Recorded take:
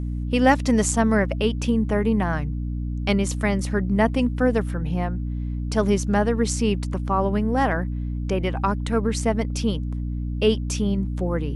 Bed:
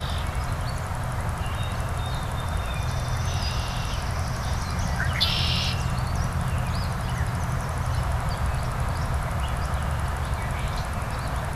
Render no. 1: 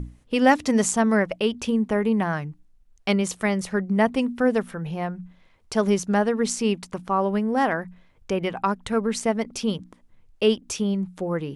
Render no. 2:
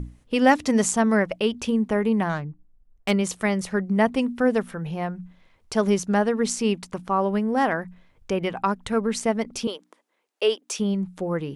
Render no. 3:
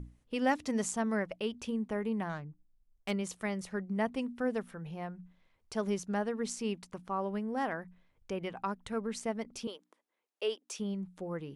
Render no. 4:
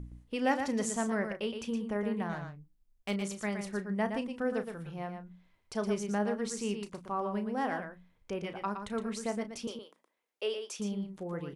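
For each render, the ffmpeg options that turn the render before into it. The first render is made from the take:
-af "bandreject=f=60:t=h:w=6,bandreject=f=120:t=h:w=6,bandreject=f=180:t=h:w=6,bandreject=f=240:t=h:w=6,bandreject=f=300:t=h:w=6"
-filter_complex "[0:a]asettb=1/sr,asplit=3[a][b][c];[a]atrim=end=2.294[d];[b]atrim=start=2.29:end=3.11,asetpts=PTS-STARTPTS,afade=t=in:d=0.004:c=qsin,afade=t=out:st=0.816:d=0.004:c=qsin,adynamicsmooth=sensitivity=2:basefreq=1.3k[e];[c]atrim=start=3.106[f];[d][e]acrossfade=d=0.004:c1=hsin:c2=qsin[g];[g][f]acrossfade=d=0.004:c1=qsin:c2=hsin,asettb=1/sr,asplit=3[h][i][j];[h]atrim=end=9.674[k];[i]atrim=start=9.67:end=10.79,asetpts=PTS-STARTPTS,afade=t=in:d=0.004:c=qsin,afade=t=out:st=1.116:d=0.004:c=qsin,highpass=f=370:w=0.5412,highpass=f=370:w=1.3066[l];[j]atrim=start=10.786[m];[k][l]acrossfade=d=0.004:c1=hsin:c2=qsin[n];[n][m]acrossfade=d=0.004:c1=qsin:c2=hsin"
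-af "volume=-12dB"
-filter_complex "[0:a]asplit=2[a][b];[b]adelay=34,volume=-11.5dB[c];[a][c]amix=inputs=2:normalize=0,aecho=1:1:117:0.447"

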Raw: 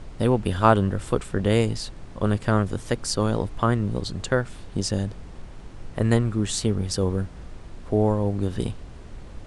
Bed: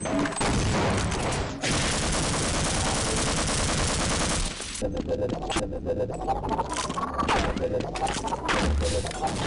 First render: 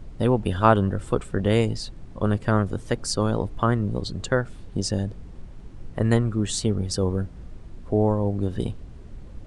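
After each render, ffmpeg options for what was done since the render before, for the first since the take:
-af "afftdn=nr=8:nf=-41"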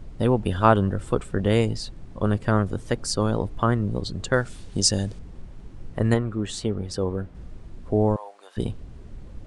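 -filter_complex "[0:a]asettb=1/sr,asplit=3[a][b][c];[a]atrim=end=4.334[d];[b]atrim=start=4.33:end=5.19,asetpts=PTS-STARTPTS,afade=t=in:d=0.004:c=qsin,afade=t=out:st=0.856:d=0.004:c=qsin,equalizer=f=7.6k:t=o:w=2.8:g=11[e];[c]atrim=start=5.186[f];[d][e]acrossfade=d=0.004:c1=hsin:c2=qsin[g];[g][f]acrossfade=d=0.004:c1=qsin:c2=hsin,asettb=1/sr,asplit=3[h][i][j];[h]atrim=end=6.144[k];[i]atrim=start=6.14:end=7.35,asetpts=PTS-STARTPTS,afade=t=in:d=0.004:c=qsin,afade=t=out:st=1.206:d=0.004:c=qsin,bass=f=250:g=-5,treble=f=4k:g=-8[l];[j]atrim=start=7.346[m];[k][l]acrossfade=d=0.004:c1=hsin:c2=qsin[n];[n][m]acrossfade=d=0.004:c1=qsin:c2=hsin,asettb=1/sr,asplit=3[o][p][q];[o]atrim=end=8.164[r];[p]atrim=start=8.16:end=8.57,asetpts=PTS-STARTPTS,afade=t=in:d=0.004:c=qsin,afade=t=out:st=0.406:d=0.004:c=qsin,highpass=f=780:w=0.5412,highpass=f=780:w=1.3066[s];[q]atrim=start=8.566[t];[r][s]acrossfade=d=0.004:c1=hsin:c2=qsin[u];[u][t]acrossfade=d=0.004:c1=qsin:c2=hsin"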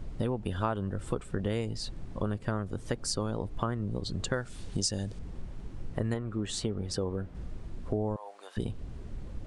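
-af "acompressor=threshold=-29dB:ratio=4"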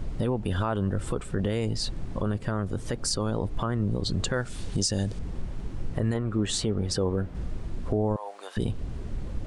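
-af "acontrast=86,alimiter=limit=-16.5dB:level=0:latency=1:release=19"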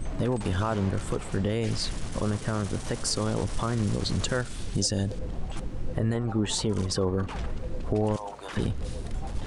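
-filter_complex "[1:a]volume=-15.5dB[a];[0:a][a]amix=inputs=2:normalize=0"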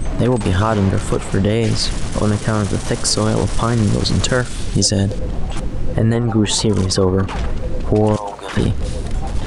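-af "volume=11.5dB"

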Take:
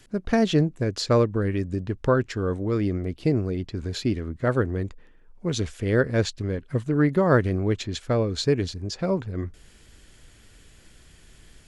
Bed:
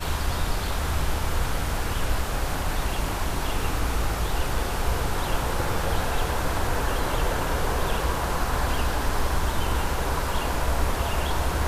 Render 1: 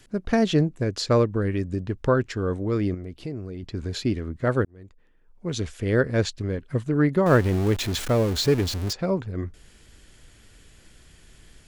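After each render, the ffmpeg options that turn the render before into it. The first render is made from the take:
-filter_complex "[0:a]asettb=1/sr,asplit=3[a][b][c];[a]atrim=end=2.944[d];[b]atrim=start=2.94:end=3.63,asetpts=PTS-STARTPTS,afade=t=in:d=0.004:c=qsin,afade=t=out:st=0.686:d=0.004:c=qsin,acompressor=threshold=-37dB:ratio=2:attack=3.2:release=140:knee=1:detection=peak[e];[c]atrim=start=3.626[f];[d][e]acrossfade=d=0.004:c1=hsin:c2=qsin[g];[g][f]acrossfade=d=0.004:c1=qsin:c2=hsin,asettb=1/sr,asplit=3[h][i][j];[h]atrim=end=7.264[k];[i]atrim=start=7.26:end=8.93,asetpts=PTS-STARTPTS,afade=t=in:d=0.004:c=qsin,afade=t=out:st=1.666:d=0.004:c=qsin,aeval=exprs='val(0)+0.5*0.0422*sgn(val(0))':c=same[l];[j]atrim=start=8.926[m];[k][l]acrossfade=d=0.004:c1=hsin:c2=qsin[n];[n][m]acrossfade=d=0.004:c1=qsin:c2=hsin,asplit=2[o][p];[o]atrim=end=4.65,asetpts=PTS-STARTPTS,afade=t=out:st=4.646:d=0.004:c=hsin[q];[p]atrim=start=4.65,asetpts=PTS-STARTPTS,afade=t=in:d=1.15[r];[q][r]concat=n=2:v=0:a=1"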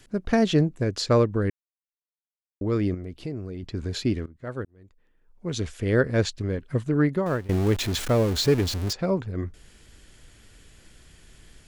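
-filter_complex "[0:a]asplit=5[a][b][c][d][e];[a]atrim=end=1.5,asetpts=PTS-STARTPTS,afade=t=out:st=1.496:d=0.004:c=hsin[f];[b]atrim=start=1.5:end=2.61,asetpts=PTS-STARTPTS,volume=0[g];[c]atrim=start=2.61:end=4.26,asetpts=PTS-STARTPTS,afade=t=in:d=0.004:c=hsin,afade=t=out:st=1.646:d=0.004:c=hsin:silence=0.11885[h];[d]atrim=start=4.26:end=7.49,asetpts=PTS-STARTPTS,afade=t=in:d=1.42:silence=0.11885,afade=t=out:st=2.71:d=0.52:silence=0.0891251[i];[e]atrim=start=7.49,asetpts=PTS-STARTPTS,afade=t=in:d=0.004:c=hsin:silence=0.0891251[j];[f][g][h][i][j]concat=n=5:v=0:a=1"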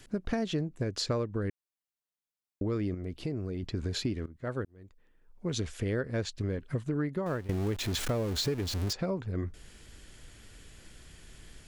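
-af "acompressor=threshold=-29dB:ratio=5"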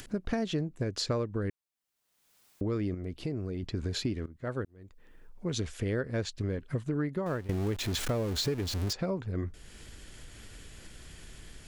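-af "acompressor=mode=upward:threshold=-41dB:ratio=2.5"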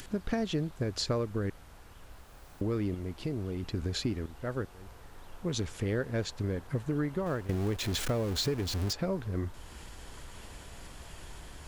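-filter_complex "[1:a]volume=-26dB[a];[0:a][a]amix=inputs=2:normalize=0"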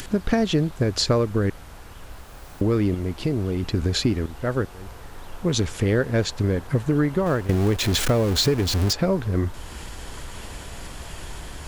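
-af "volume=10.5dB"

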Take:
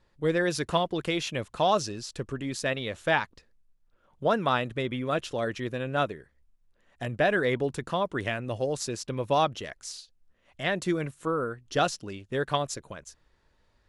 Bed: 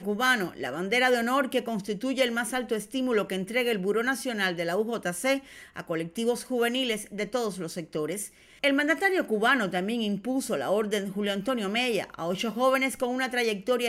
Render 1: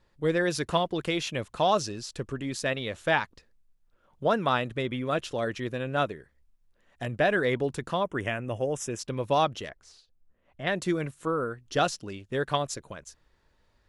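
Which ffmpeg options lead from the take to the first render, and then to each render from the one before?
-filter_complex "[0:a]asettb=1/sr,asplit=3[a][b][c];[a]atrim=end=8.044[d];[b]atrim=start=8.04:end=8.99,asetpts=PTS-STARTPTS,afade=t=in:d=0.004:c=qsin,afade=t=out:st=0.946:d=0.004:c=qsin,asuperstop=centerf=4300:order=4:qfactor=1.8[e];[c]atrim=start=8.986[f];[d][e]acrossfade=d=0.004:c1=hsin:c2=qsin[g];[g][f]acrossfade=d=0.004:c1=qsin:c2=hsin,asettb=1/sr,asplit=3[h][i][j];[h]atrim=end=9.694[k];[i]atrim=start=9.69:end=10.67,asetpts=PTS-STARTPTS,afade=t=in:d=0.004:c=qsin,afade=t=out:st=0.976:d=0.004:c=qsin,lowpass=f=1k:p=1[l];[j]atrim=start=10.666[m];[k][l]acrossfade=d=0.004:c1=hsin:c2=qsin[n];[n][m]acrossfade=d=0.004:c1=qsin:c2=hsin"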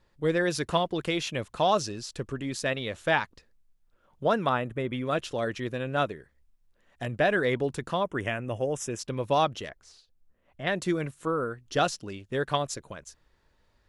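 -filter_complex "[0:a]asettb=1/sr,asplit=3[a][b][c];[a]atrim=end=4.494[d];[b]atrim=start=4.49:end=4.93,asetpts=PTS-STARTPTS,afade=t=in:d=0.004:c=qsin,afade=t=out:st=0.436:d=0.004:c=qsin,equalizer=f=4.5k:t=o:w=1.2:g=-14[e];[c]atrim=start=4.926[f];[d][e]acrossfade=d=0.004:c1=hsin:c2=qsin[g];[g][f]acrossfade=d=0.004:c1=qsin:c2=hsin"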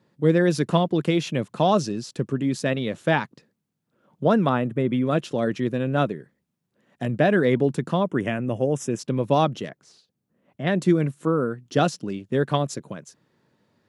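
-af "highpass=f=120:w=0.5412,highpass=f=120:w=1.3066,equalizer=f=190:w=0.52:g=12"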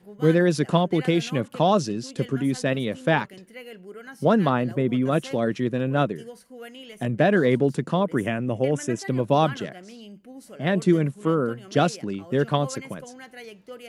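-filter_complex "[1:a]volume=-15dB[a];[0:a][a]amix=inputs=2:normalize=0"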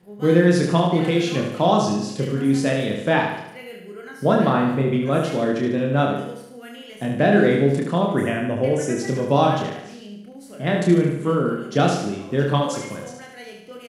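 -filter_complex "[0:a]asplit=2[a][b];[b]adelay=29,volume=-3.5dB[c];[a][c]amix=inputs=2:normalize=0,aecho=1:1:73|146|219|292|365|438|511:0.562|0.298|0.158|0.0837|0.0444|0.0235|0.0125"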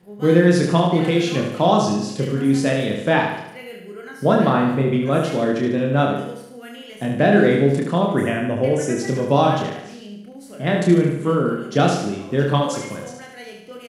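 -af "volume=1.5dB,alimiter=limit=-2dB:level=0:latency=1"

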